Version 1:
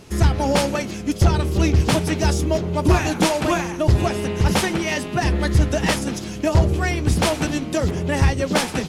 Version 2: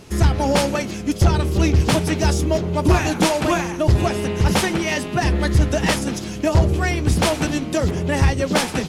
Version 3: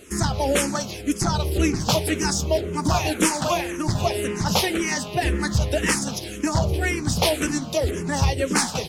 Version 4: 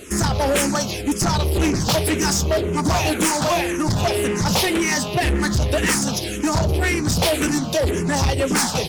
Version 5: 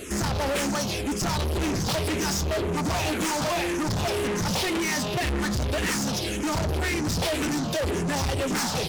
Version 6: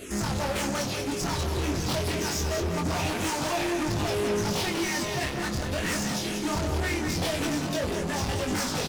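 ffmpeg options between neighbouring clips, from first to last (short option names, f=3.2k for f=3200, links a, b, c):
-af "acontrast=21,volume=-3.5dB"
-filter_complex "[0:a]bass=f=250:g=-3,treble=f=4k:g=6,asplit=2[a][b];[b]afreqshift=-1.9[c];[a][c]amix=inputs=2:normalize=1"
-af "asoftclip=type=tanh:threshold=-22.5dB,volume=7.5dB"
-filter_complex "[0:a]acrossover=split=7300[a][b];[b]acompressor=threshold=-40dB:ratio=4:attack=1:release=60[c];[a][c]amix=inputs=2:normalize=0,asoftclip=type=tanh:threshold=-26dB,volume=1.5dB"
-af "flanger=delay=19.5:depth=4.3:speed=0.24,aecho=1:1:194|388|582|776:0.447|0.161|0.0579|0.0208"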